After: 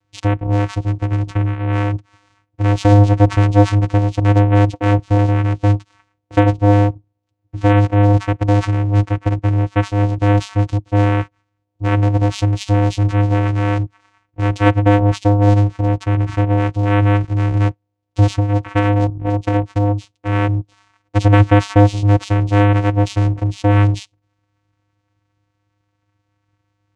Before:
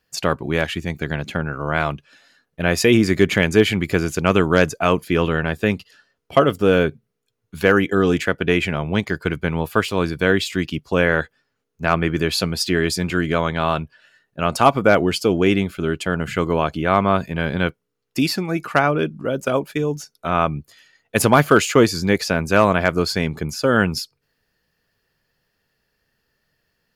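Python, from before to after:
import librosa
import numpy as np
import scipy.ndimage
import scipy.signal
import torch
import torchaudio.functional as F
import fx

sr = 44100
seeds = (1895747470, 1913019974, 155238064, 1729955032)

p1 = fx.vocoder(x, sr, bands=4, carrier='square', carrier_hz=102.0)
p2 = 10.0 ** (-16.5 / 20.0) * np.tanh(p1 / 10.0 ** (-16.5 / 20.0))
p3 = p1 + F.gain(torch.from_numpy(p2), -4.0).numpy()
y = F.gain(torch.from_numpy(p3), 2.5).numpy()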